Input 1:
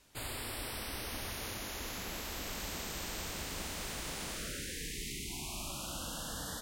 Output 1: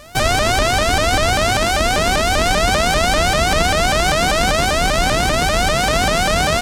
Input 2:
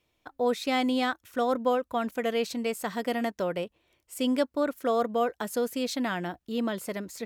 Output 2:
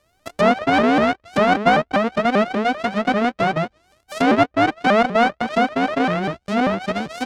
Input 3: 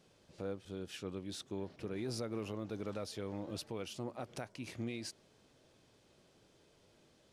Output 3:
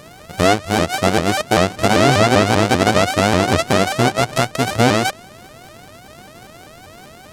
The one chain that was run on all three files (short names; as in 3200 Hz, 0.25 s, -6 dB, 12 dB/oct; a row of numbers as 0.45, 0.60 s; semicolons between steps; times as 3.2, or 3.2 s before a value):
sample sorter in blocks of 64 samples; treble ducked by the level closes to 2300 Hz, closed at -27.5 dBFS; shaped vibrato saw up 5.1 Hz, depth 250 cents; normalise peaks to -3 dBFS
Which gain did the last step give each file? +25.5, +11.0, +27.0 dB